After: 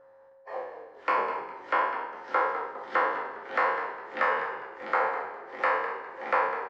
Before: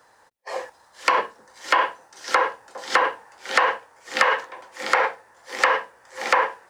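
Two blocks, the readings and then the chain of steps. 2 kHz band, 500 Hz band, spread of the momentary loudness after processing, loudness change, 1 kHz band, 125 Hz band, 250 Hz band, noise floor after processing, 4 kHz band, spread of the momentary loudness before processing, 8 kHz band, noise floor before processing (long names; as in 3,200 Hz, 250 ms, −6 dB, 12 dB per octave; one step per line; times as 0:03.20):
−7.5 dB, −4.0 dB, 11 LU, −7.0 dB, −4.5 dB, can't be measured, −3.5 dB, −56 dBFS, −17.5 dB, 17 LU, below −25 dB, −57 dBFS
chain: peak hold with a decay on every bin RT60 0.78 s
low-pass filter 1,500 Hz 12 dB per octave
on a send: echo with shifted repeats 204 ms, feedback 33%, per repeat −52 Hz, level −10.5 dB
on the sum: steady tone 540 Hz −46 dBFS
level −7.5 dB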